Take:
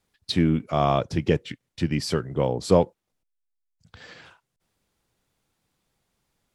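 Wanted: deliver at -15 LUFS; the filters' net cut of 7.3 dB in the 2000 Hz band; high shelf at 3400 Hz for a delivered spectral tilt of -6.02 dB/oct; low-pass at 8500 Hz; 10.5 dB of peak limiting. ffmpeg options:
-af "lowpass=8.5k,equalizer=f=2k:t=o:g=-7,highshelf=f=3.4k:g=-6.5,volume=13.5dB,alimiter=limit=-1.5dB:level=0:latency=1"

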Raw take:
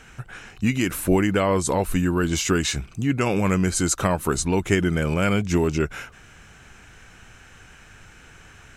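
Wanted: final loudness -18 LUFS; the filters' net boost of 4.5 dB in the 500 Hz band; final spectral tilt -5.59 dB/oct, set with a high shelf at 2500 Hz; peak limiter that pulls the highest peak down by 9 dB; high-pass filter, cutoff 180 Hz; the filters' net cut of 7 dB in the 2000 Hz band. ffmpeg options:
-af "highpass=180,equalizer=f=500:t=o:g=6.5,equalizer=f=2k:t=o:g=-6.5,highshelf=f=2.5k:g=-7,volume=7.5dB,alimiter=limit=-6.5dB:level=0:latency=1"

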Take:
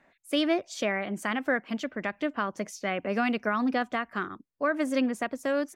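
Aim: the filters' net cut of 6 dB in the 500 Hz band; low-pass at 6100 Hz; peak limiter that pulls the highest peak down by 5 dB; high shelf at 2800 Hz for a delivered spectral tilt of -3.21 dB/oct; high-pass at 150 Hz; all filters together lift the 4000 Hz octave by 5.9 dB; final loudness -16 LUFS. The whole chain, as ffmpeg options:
-af "highpass=150,lowpass=6.1k,equalizer=f=500:t=o:g=-8,highshelf=f=2.8k:g=5,equalizer=f=4k:t=o:g=5,volume=15.5dB,alimiter=limit=-2.5dB:level=0:latency=1"

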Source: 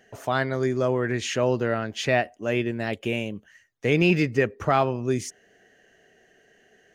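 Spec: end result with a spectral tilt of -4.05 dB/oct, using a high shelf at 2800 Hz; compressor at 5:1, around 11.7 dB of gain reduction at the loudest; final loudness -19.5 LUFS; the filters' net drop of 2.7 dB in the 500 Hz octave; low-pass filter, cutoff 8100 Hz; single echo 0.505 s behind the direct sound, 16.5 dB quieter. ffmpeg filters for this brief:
-af "lowpass=8.1k,equalizer=f=500:t=o:g=-4,highshelf=f=2.8k:g=8.5,acompressor=threshold=-29dB:ratio=5,aecho=1:1:505:0.15,volume=13.5dB"

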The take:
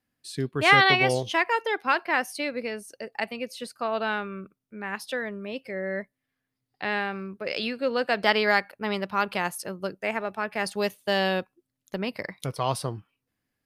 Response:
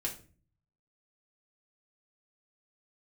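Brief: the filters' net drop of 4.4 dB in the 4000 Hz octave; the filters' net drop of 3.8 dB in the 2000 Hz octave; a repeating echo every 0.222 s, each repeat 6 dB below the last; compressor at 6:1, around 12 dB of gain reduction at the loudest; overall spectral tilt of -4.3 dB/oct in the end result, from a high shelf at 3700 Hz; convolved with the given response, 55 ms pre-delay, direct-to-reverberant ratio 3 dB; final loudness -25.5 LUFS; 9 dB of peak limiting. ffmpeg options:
-filter_complex "[0:a]equalizer=f=2k:t=o:g=-4,highshelf=f=3.7k:g=3.5,equalizer=f=4k:t=o:g=-6.5,acompressor=threshold=-28dB:ratio=6,alimiter=level_in=2.5dB:limit=-24dB:level=0:latency=1,volume=-2.5dB,aecho=1:1:222|444|666|888|1110|1332:0.501|0.251|0.125|0.0626|0.0313|0.0157,asplit=2[a][b];[1:a]atrim=start_sample=2205,adelay=55[c];[b][c]afir=irnorm=-1:irlink=0,volume=-5dB[d];[a][d]amix=inputs=2:normalize=0,volume=9dB"

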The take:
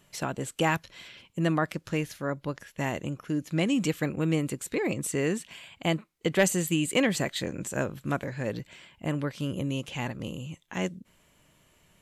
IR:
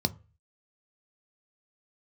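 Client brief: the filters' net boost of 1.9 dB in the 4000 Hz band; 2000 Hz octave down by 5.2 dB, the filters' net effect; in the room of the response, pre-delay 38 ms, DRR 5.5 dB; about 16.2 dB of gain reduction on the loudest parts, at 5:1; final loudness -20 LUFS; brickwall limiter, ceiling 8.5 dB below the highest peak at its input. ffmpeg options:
-filter_complex "[0:a]equalizer=f=2k:t=o:g=-8.5,equalizer=f=4k:t=o:g=7,acompressor=threshold=-38dB:ratio=5,alimiter=level_in=7.5dB:limit=-24dB:level=0:latency=1,volume=-7.5dB,asplit=2[a][b];[1:a]atrim=start_sample=2205,adelay=38[c];[b][c]afir=irnorm=-1:irlink=0,volume=-12dB[d];[a][d]amix=inputs=2:normalize=0,volume=19dB"

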